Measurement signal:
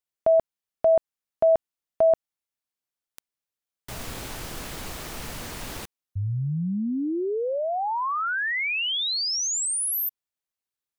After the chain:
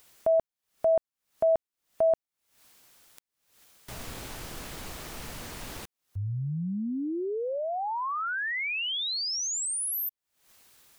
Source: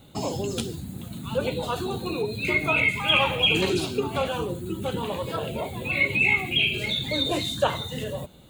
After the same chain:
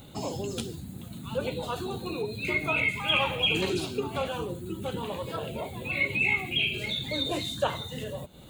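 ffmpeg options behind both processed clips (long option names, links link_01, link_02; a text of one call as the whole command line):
ffmpeg -i in.wav -af "acompressor=mode=upward:threshold=-34dB:ratio=4:attack=0.23:release=242:knee=2.83:detection=peak,volume=-4.5dB" out.wav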